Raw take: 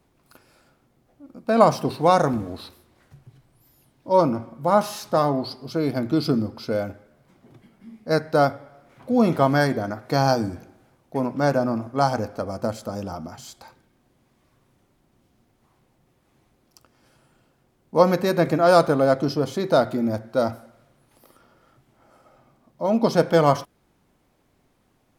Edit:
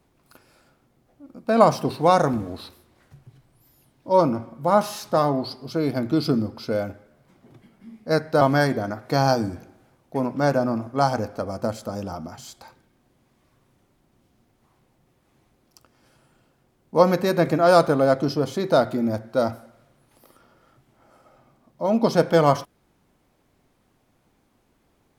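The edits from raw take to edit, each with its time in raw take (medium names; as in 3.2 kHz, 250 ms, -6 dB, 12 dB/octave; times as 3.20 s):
8.41–9.41 s: delete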